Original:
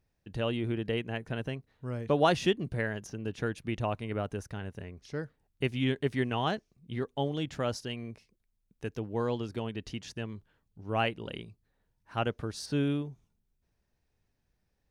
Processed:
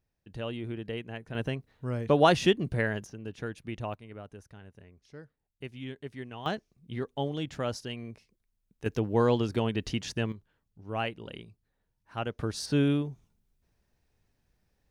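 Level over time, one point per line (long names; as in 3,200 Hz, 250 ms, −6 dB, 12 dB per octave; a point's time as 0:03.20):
−4.5 dB
from 0:01.35 +3.5 dB
from 0:03.05 −4 dB
from 0:03.94 −11 dB
from 0:06.46 −0.5 dB
from 0:08.86 +7 dB
from 0:10.32 −3 dB
from 0:12.39 +4 dB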